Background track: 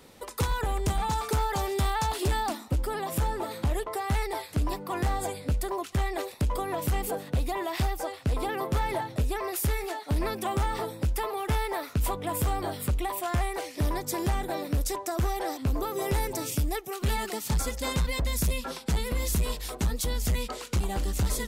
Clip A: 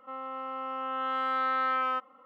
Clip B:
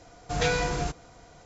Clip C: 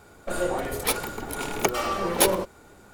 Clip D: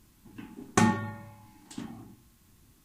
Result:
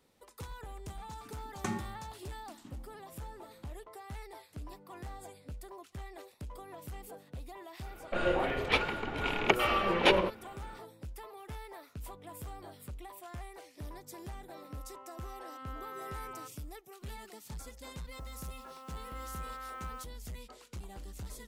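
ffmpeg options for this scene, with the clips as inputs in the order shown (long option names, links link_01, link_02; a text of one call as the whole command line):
ffmpeg -i bed.wav -i cue0.wav -i cue1.wav -i cue2.wav -i cue3.wav -filter_complex "[1:a]asplit=2[link_01][link_02];[0:a]volume=-17dB[link_03];[3:a]lowpass=frequency=2800:width_type=q:width=2.3[link_04];[link_02]acrusher=bits=7:mix=0:aa=0.000001[link_05];[4:a]atrim=end=2.84,asetpts=PTS-STARTPTS,volume=-13dB,afade=type=in:duration=0.004:curve=hsin,afade=type=out:start_time=2.836:duration=0.004:curve=hsin,adelay=870[link_06];[link_04]atrim=end=2.93,asetpts=PTS-STARTPTS,volume=-3.5dB,afade=type=in:duration=0.004:curve=hsin,afade=type=out:start_time=2.926:duration=0.004:curve=hsin,adelay=7850[link_07];[link_01]atrim=end=2.25,asetpts=PTS-STARTPTS,volume=-17dB,afade=type=in:duration=0.004:curve=hsin,afade=type=out:start_time=2.246:duration=0.004:curve=hsin,adelay=14480[link_08];[link_05]atrim=end=2.25,asetpts=PTS-STARTPTS,volume=-16dB,afade=type=in:duration=0.004:curve=hsin,afade=type=out:start_time=2.246:duration=0.004:curve=hsin,adelay=18040[link_09];[link_03][link_06][link_07][link_08][link_09]amix=inputs=5:normalize=0" out.wav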